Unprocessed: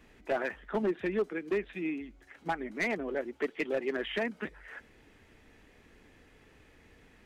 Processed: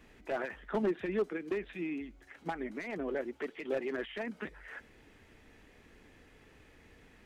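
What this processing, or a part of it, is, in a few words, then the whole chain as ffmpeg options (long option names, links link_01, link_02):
de-esser from a sidechain: -filter_complex "[0:a]asplit=2[link_01][link_02];[link_02]highpass=4000,apad=whole_len=320085[link_03];[link_01][link_03]sidechaincompress=threshold=-54dB:ratio=5:attack=4.7:release=33"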